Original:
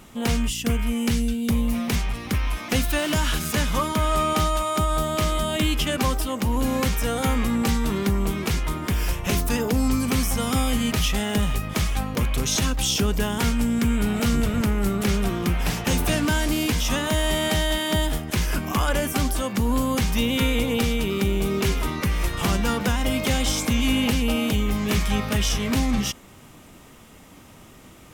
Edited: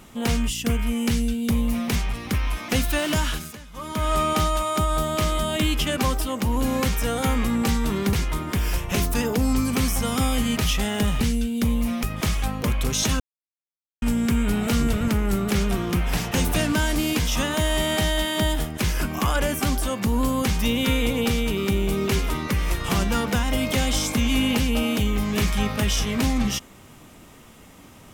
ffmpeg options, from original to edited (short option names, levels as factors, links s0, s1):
-filter_complex "[0:a]asplit=8[s0][s1][s2][s3][s4][s5][s6][s7];[s0]atrim=end=3.58,asetpts=PTS-STARTPTS,afade=t=out:st=3.19:d=0.39:silence=0.1[s8];[s1]atrim=start=3.58:end=3.73,asetpts=PTS-STARTPTS,volume=0.1[s9];[s2]atrim=start=3.73:end=8.132,asetpts=PTS-STARTPTS,afade=t=in:d=0.39:silence=0.1[s10];[s3]atrim=start=8.478:end=11.562[s11];[s4]atrim=start=1.078:end=1.902[s12];[s5]atrim=start=11.558:end=12.73,asetpts=PTS-STARTPTS,afade=t=out:st=1.168:d=0.004:c=hsin[s13];[s6]atrim=start=12.73:end=13.55,asetpts=PTS-STARTPTS,volume=0[s14];[s7]atrim=start=13.55,asetpts=PTS-STARTPTS,afade=t=in:d=0.004:c=hsin[s15];[s8][s9][s10]concat=n=3:v=0:a=1[s16];[s16][s11]acrossfade=d=0.004:c1=hsin:c2=hsin[s17];[s17][s12]acrossfade=d=0.004:c1=hsin:c2=hsin[s18];[s13][s14][s15]concat=n=3:v=0:a=1[s19];[s18][s19]acrossfade=d=0.004:c1=hsin:c2=hsin"